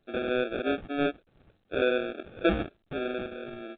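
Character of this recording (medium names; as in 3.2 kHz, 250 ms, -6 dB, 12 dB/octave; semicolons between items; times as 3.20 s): phasing stages 4, 3.3 Hz, lowest notch 750–1900 Hz; aliases and images of a low sample rate 1 kHz, jitter 0%; A-law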